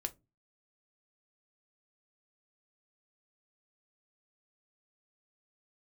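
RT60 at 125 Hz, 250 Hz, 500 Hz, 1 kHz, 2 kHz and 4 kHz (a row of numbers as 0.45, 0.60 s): 0.45, 0.40, 0.30, 0.20, 0.15, 0.15 s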